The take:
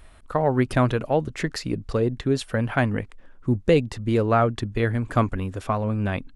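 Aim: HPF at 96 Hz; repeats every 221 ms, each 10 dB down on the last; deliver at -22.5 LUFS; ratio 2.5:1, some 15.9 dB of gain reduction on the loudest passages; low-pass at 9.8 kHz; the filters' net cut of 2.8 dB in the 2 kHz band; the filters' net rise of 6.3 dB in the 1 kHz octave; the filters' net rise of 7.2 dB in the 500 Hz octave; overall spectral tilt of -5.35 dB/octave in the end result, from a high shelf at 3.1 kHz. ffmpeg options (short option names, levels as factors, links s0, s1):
-af "highpass=96,lowpass=9800,equalizer=f=500:t=o:g=7,equalizer=f=1000:t=o:g=8,equalizer=f=2000:t=o:g=-5.5,highshelf=f=3100:g=-7.5,acompressor=threshold=0.0251:ratio=2.5,aecho=1:1:221|442|663|884:0.316|0.101|0.0324|0.0104,volume=2.82"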